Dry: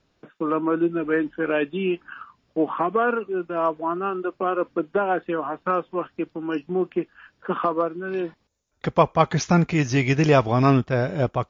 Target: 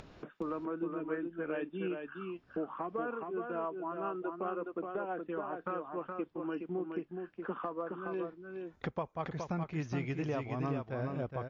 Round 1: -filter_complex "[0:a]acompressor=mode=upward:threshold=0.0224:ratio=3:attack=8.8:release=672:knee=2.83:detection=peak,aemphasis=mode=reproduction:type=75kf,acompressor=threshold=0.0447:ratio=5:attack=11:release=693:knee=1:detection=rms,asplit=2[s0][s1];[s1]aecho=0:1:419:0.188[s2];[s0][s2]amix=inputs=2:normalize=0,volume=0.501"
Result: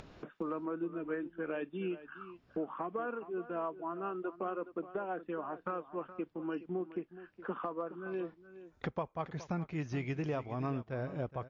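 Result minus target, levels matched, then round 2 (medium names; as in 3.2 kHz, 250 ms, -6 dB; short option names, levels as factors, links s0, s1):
echo-to-direct -9.5 dB
-filter_complex "[0:a]acompressor=mode=upward:threshold=0.0224:ratio=3:attack=8.8:release=672:knee=2.83:detection=peak,aemphasis=mode=reproduction:type=75kf,acompressor=threshold=0.0447:ratio=5:attack=11:release=693:knee=1:detection=rms,asplit=2[s0][s1];[s1]aecho=0:1:419:0.562[s2];[s0][s2]amix=inputs=2:normalize=0,volume=0.501"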